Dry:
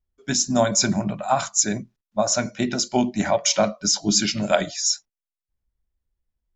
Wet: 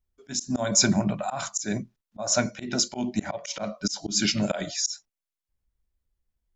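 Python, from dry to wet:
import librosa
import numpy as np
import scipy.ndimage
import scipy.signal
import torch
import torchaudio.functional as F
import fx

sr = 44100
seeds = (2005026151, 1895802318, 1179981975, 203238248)

y = fx.auto_swell(x, sr, attack_ms=189.0)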